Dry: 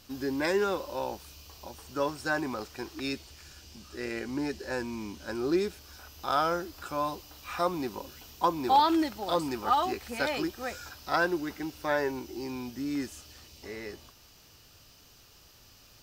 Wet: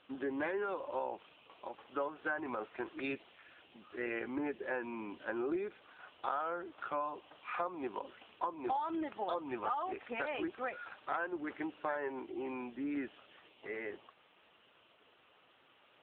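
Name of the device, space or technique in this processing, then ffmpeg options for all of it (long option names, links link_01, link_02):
voicemail: -af "highpass=370,lowpass=3100,acompressor=threshold=-34dB:ratio=10,volume=2dB" -ar 8000 -c:a libopencore_amrnb -b:a 6700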